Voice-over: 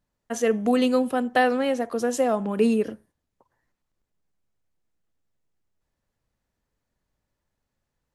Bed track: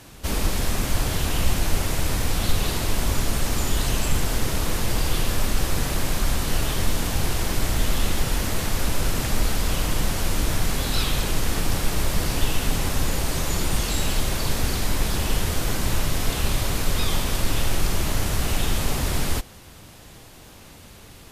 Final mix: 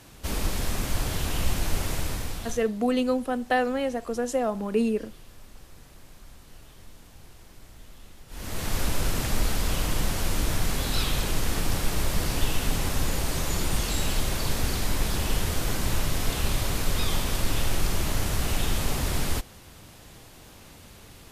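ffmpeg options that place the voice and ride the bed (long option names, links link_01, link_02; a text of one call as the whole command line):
ffmpeg -i stem1.wav -i stem2.wav -filter_complex "[0:a]adelay=2150,volume=-3.5dB[link_01];[1:a]volume=18.5dB,afade=type=out:start_time=1.93:duration=0.76:silence=0.0841395,afade=type=in:start_time=8.28:duration=0.47:silence=0.0707946[link_02];[link_01][link_02]amix=inputs=2:normalize=0" out.wav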